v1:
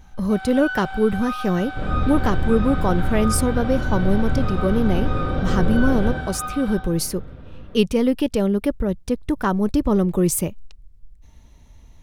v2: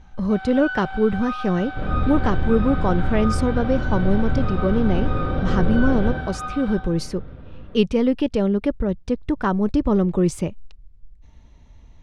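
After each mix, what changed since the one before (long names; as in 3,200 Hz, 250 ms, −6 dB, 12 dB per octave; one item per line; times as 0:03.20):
master: add high-frequency loss of the air 110 metres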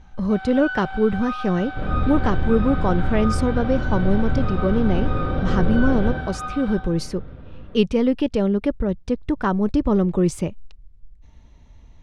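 nothing changed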